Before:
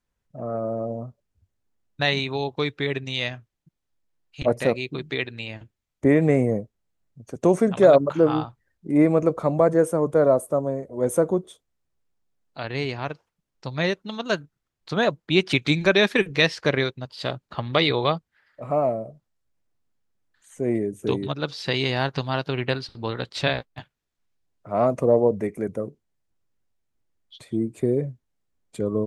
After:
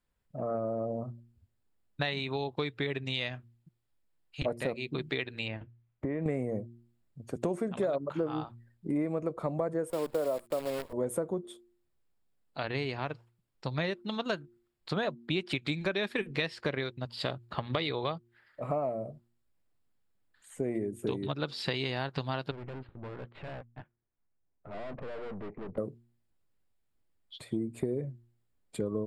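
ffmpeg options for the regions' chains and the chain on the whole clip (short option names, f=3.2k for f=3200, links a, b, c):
-filter_complex "[0:a]asettb=1/sr,asplit=3[a][b][c];[a]atrim=end=5.484[d];[b]atrim=start=5.48:end=6.26,asetpts=PTS-STARTPTS,afade=t=in:d=0.004:c=qsin,afade=t=out:st=0.776:d=0.004:c=qsin,lowpass=2.4k,acompressor=threshold=-28dB:ratio=4:attack=3.2:release=140:knee=1:detection=peak[e];[c]atrim=start=6.256[f];[d][e]acrossfade=d=0.004:c1=hsin:c2=qsin[g];[g][f]acrossfade=d=0.004:c1=qsin:c2=hsin,asettb=1/sr,asplit=3[h][i][j];[h]atrim=end=9.904[k];[i]atrim=start=9.9:end=10.93,asetpts=PTS-STARTPTS,afade=t=in:d=0.004:c=qsin,afade=t=out:st=1.026:d=0.004:c=qsin,highpass=430,aemphasis=mode=reproduction:type=riaa,acrusher=bits=6:dc=4:mix=0:aa=0.000001[l];[j]atrim=start=10.926[m];[k][l]acrossfade=d=0.004:c1=hsin:c2=qsin[n];[n][m]acrossfade=d=0.004:c1=qsin:c2=hsin,asettb=1/sr,asplit=3[o][p][q];[o]atrim=end=22.514[r];[p]atrim=start=22.51:end=25.78,asetpts=PTS-STARTPTS,afade=t=in:d=0.004:c=qsin,afade=t=out:st=3.266:d=0.004:c=qsin,lowpass=f=2.7k:w=0.5412,lowpass=f=2.7k:w=1.3066,aeval=exprs='(tanh(79.4*val(0)+0.6)-tanh(0.6))/79.4':c=same,adynamicsmooth=sensitivity=2:basefreq=2k[s];[q]atrim=start=25.776[t];[r][s]acrossfade=d=0.004:c1=hsin:c2=qsin[u];[u][t]acrossfade=d=0.004:c1=qsin:c2=hsin,equalizer=f=6.1k:w=7.2:g=-13.5,bandreject=f=117.5:t=h:w=4,bandreject=f=235:t=h:w=4,bandreject=f=352.5:t=h:w=4,acompressor=threshold=-28dB:ratio=6,volume=-1dB"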